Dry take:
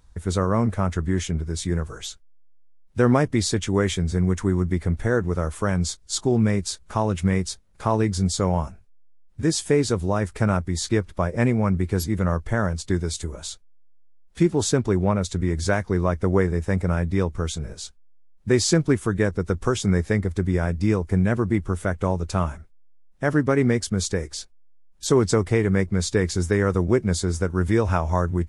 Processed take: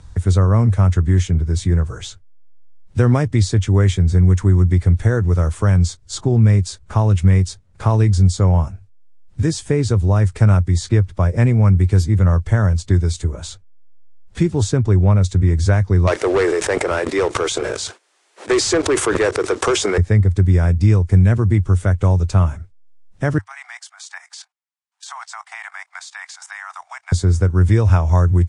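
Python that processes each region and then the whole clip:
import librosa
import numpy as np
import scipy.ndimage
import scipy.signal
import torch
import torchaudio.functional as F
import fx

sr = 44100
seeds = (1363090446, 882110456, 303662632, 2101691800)

y = fx.chain(x, sr, fx.steep_highpass(hz=350.0, slope=36),
    fx.leveller(passes=3),
    fx.sustainer(db_per_s=25.0), at=(16.07, 19.98))
y = fx.chain(y, sr, fx.steep_highpass(hz=720.0, slope=96),
    fx.level_steps(step_db=13), at=(23.38, 27.12))
y = scipy.signal.sosfilt(scipy.signal.butter(8, 9700.0, 'lowpass', fs=sr, output='sos'), y)
y = fx.peak_eq(y, sr, hz=98.0, db=14.0, octaves=0.86)
y = fx.band_squash(y, sr, depth_pct=40)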